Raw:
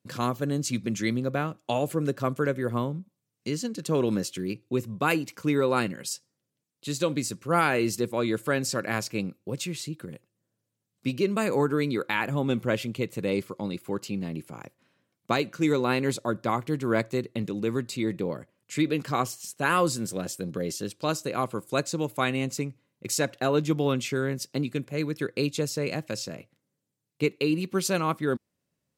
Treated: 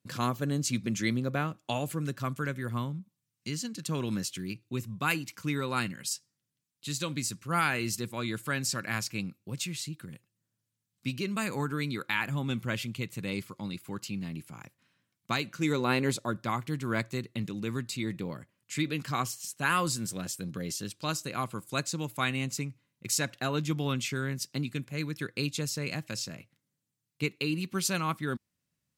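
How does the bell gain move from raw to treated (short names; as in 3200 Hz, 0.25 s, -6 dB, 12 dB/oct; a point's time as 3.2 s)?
bell 480 Hz 1.7 oct
1.56 s -5.5 dB
2.07 s -13.5 dB
15.33 s -13.5 dB
16.02 s -2.5 dB
16.46 s -11 dB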